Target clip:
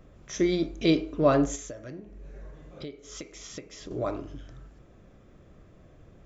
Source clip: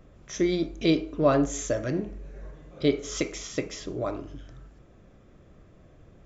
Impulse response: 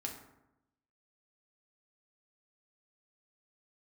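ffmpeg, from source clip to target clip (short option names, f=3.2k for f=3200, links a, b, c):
-filter_complex "[0:a]asettb=1/sr,asplit=3[a][b][c];[a]atrim=end=1.554[d];[b]atrim=start=1.55:end=3.91,asetpts=PTS-STARTPTS,afade=t=in:d=0.004:c=qsin,afade=t=out:st=2.356:d=0.004:c=qsin,acompressor=threshold=-39dB:ratio=6[e];[c]atrim=start=3.906[f];[d][e]acrossfade=d=0.004:c1=hsin:c2=qsin[g];[g][f]acrossfade=d=0.004:c1=qsin:c2=hsin"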